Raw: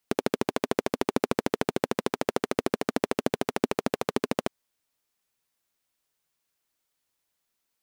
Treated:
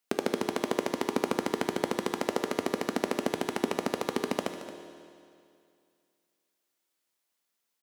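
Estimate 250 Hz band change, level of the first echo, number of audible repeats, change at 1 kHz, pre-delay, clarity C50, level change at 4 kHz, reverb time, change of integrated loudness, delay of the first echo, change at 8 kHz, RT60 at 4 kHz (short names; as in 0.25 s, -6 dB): -2.0 dB, -13.5 dB, 1, -1.0 dB, 12 ms, 6.5 dB, -1.0 dB, 2.4 s, -2.0 dB, 0.224 s, -0.5 dB, 2.3 s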